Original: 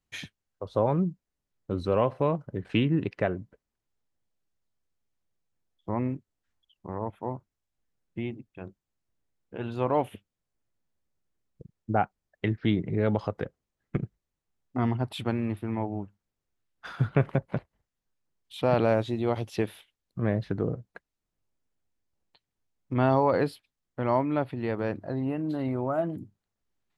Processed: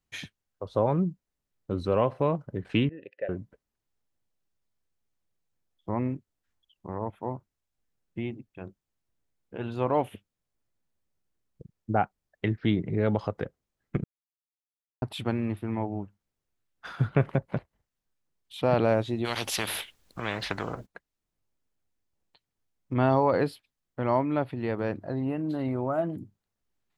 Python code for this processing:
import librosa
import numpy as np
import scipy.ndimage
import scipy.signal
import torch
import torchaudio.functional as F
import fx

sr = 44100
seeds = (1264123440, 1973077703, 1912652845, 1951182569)

y = fx.vowel_filter(x, sr, vowel='e', at=(2.89, 3.29))
y = fx.spectral_comp(y, sr, ratio=4.0, at=(19.24, 20.85), fade=0.02)
y = fx.edit(y, sr, fx.silence(start_s=14.04, length_s=0.98), tone=tone)